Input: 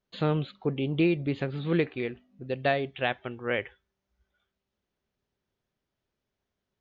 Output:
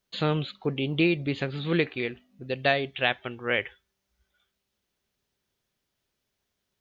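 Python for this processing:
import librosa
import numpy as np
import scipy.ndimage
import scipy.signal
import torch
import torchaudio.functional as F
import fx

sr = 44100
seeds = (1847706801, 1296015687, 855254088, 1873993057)

y = fx.high_shelf(x, sr, hz=2100.0, db=10.5)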